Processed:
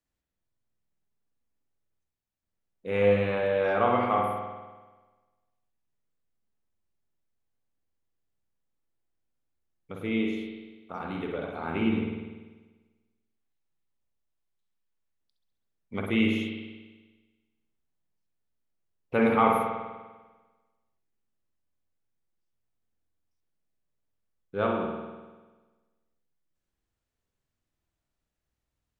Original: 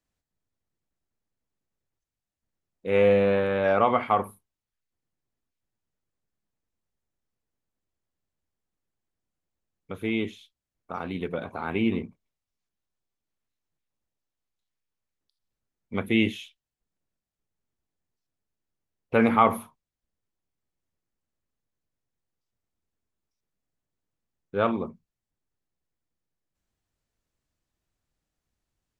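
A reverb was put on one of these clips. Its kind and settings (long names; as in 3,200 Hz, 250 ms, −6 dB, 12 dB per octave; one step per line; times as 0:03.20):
spring reverb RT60 1.3 s, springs 49 ms, chirp 20 ms, DRR 0 dB
level −4.5 dB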